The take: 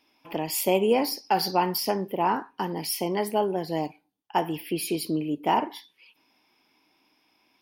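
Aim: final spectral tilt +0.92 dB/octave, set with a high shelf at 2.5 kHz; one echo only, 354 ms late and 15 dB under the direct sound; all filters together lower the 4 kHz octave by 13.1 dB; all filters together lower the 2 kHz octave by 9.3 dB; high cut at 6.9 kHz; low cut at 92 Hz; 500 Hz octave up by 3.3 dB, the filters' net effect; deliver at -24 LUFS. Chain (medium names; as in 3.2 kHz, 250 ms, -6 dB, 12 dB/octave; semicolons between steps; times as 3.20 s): high-pass 92 Hz; low-pass 6.9 kHz; peaking EQ 500 Hz +5 dB; peaking EQ 2 kHz -6.5 dB; treble shelf 2.5 kHz -8 dB; peaking EQ 4 kHz -7.5 dB; delay 354 ms -15 dB; trim +2 dB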